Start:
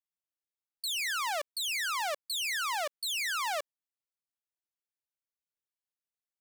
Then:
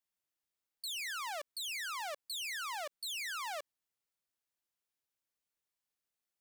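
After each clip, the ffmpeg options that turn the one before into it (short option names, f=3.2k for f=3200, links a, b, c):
-af "alimiter=level_in=15dB:limit=-24dB:level=0:latency=1,volume=-15dB,volume=3.5dB"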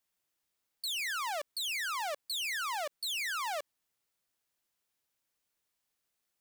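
-af "asoftclip=type=tanh:threshold=-37.5dB,volume=7dB"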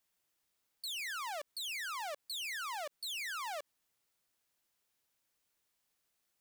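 -af "alimiter=level_in=15dB:limit=-24dB:level=0:latency=1:release=67,volume=-15dB,volume=2dB"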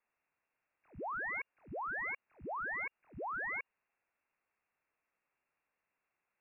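-af "lowpass=f=2.4k:t=q:w=0.5098,lowpass=f=2.4k:t=q:w=0.6013,lowpass=f=2.4k:t=q:w=0.9,lowpass=f=2.4k:t=q:w=2.563,afreqshift=-2800,volume=2.5dB"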